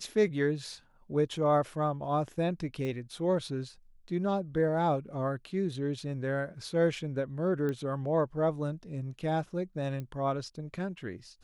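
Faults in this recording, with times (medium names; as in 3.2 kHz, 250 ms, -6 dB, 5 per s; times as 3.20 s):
2.85 s: pop -25 dBFS
7.69 s: pop -23 dBFS
10.00 s: pop -27 dBFS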